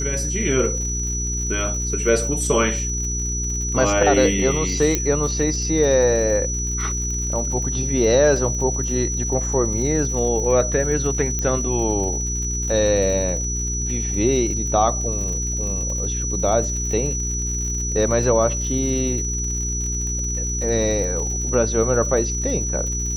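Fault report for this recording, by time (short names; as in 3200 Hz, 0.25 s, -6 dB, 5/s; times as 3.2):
crackle 80/s -29 dBFS
hum 60 Hz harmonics 7 -26 dBFS
tone 5900 Hz -25 dBFS
4.95 pop -5 dBFS
11.39 pop -11 dBFS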